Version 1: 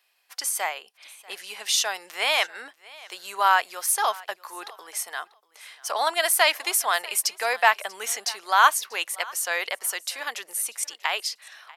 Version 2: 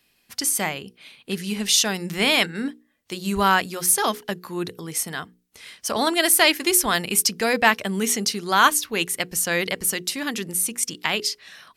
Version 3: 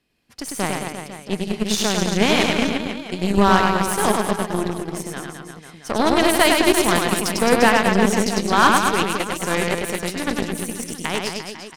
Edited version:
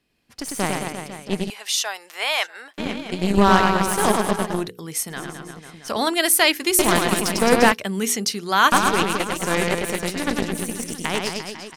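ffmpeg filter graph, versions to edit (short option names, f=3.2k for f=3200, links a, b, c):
-filter_complex "[1:a]asplit=3[a][b][c];[2:a]asplit=5[d][e][f][g][h];[d]atrim=end=1.502[i];[0:a]atrim=start=1.498:end=2.782[j];[e]atrim=start=2.778:end=4.68[k];[a]atrim=start=4.52:end=5.24[l];[f]atrim=start=5.08:end=5.882[m];[b]atrim=start=5.878:end=6.792[n];[g]atrim=start=6.788:end=7.722[o];[c]atrim=start=7.718:end=8.722[p];[h]atrim=start=8.718[q];[i][j]acrossfade=d=0.004:c1=hsin:c2=hsin[r];[r][k]acrossfade=d=0.004:c1=hsin:c2=hsin[s];[s][l]acrossfade=d=0.16:c1=tri:c2=tri[t];[t][m]acrossfade=d=0.16:c1=tri:c2=tri[u];[u][n]acrossfade=d=0.004:c1=hsin:c2=hsin[v];[v][o]acrossfade=d=0.004:c1=hsin:c2=hsin[w];[w][p]acrossfade=d=0.004:c1=hsin:c2=hsin[x];[x][q]acrossfade=d=0.004:c1=hsin:c2=hsin"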